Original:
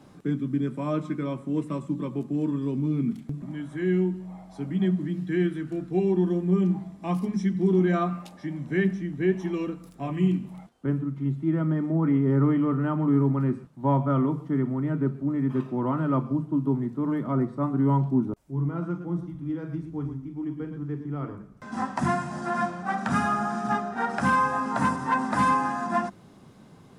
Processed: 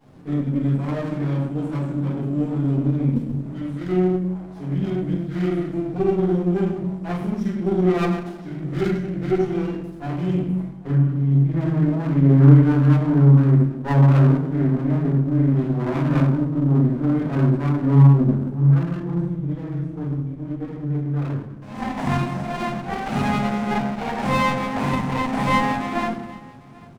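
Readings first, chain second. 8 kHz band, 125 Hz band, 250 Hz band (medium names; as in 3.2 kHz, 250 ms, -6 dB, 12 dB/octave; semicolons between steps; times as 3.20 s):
no reading, +10.5 dB, +4.5 dB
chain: delay 793 ms -23.5 dB; simulated room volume 200 m³, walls mixed, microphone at 4.9 m; sliding maximum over 17 samples; trim -10.5 dB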